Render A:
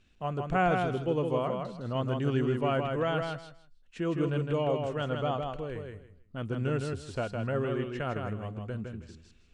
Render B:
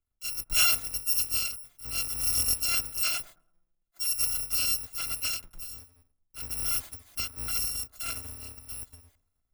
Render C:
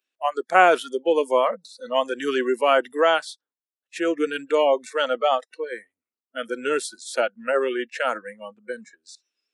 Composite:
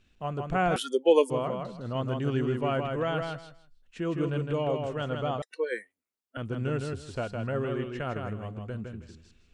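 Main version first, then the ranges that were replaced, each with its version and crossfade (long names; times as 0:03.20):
A
0:00.76–0:01.30: punch in from C
0:05.42–0:06.37: punch in from C
not used: B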